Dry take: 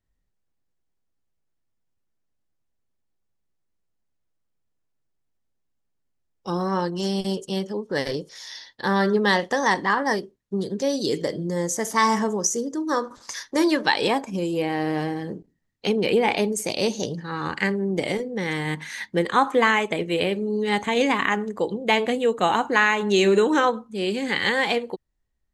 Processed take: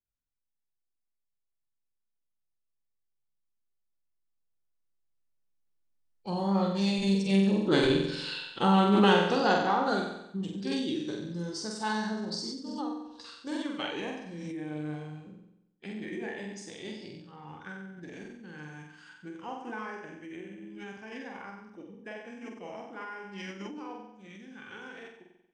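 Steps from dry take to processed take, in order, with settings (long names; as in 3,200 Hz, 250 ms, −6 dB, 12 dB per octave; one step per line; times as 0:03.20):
source passing by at 0:07.91, 11 m/s, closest 10 metres
flutter between parallel walls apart 7.9 metres, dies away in 0.85 s
formants moved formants −4 semitones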